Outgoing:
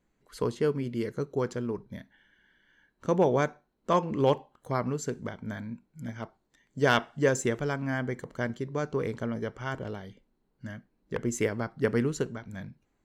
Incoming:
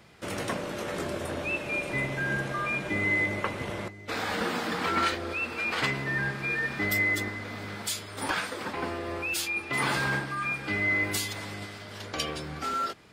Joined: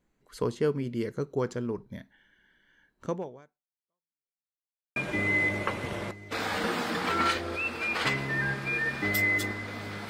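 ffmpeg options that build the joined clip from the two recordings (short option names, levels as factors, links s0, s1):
-filter_complex "[0:a]apad=whole_dur=10.09,atrim=end=10.09,asplit=2[s0][s1];[s0]atrim=end=4.39,asetpts=PTS-STARTPTS,afade=t=out:st=3.04:d=1.35:c=exp[s2];[s1]atrim=start=4.39:end=4.96,asetpts=PTS-STARTPTS,volume=0[s3];[1:a]atrim=start=2.73:end=7.86,asetpts=PTS-STARTPTS,afade=t=in:d=0.004:c=hsin[s4];[s2][s3][s4]concat=n=3:v=0:a=1"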